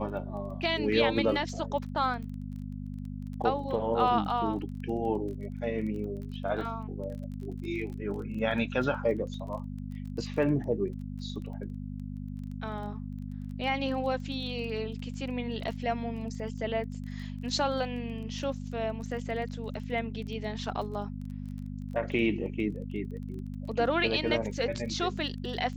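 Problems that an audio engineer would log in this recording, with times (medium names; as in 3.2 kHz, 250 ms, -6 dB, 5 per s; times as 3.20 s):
crackle 18 per s -39 dBFS
hum 50 Hz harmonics 5 -38 dBFS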